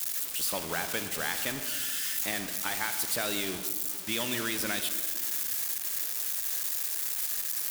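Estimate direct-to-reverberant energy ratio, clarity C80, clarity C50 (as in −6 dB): 8.5 dB, 10.5 dB, 9.5 dB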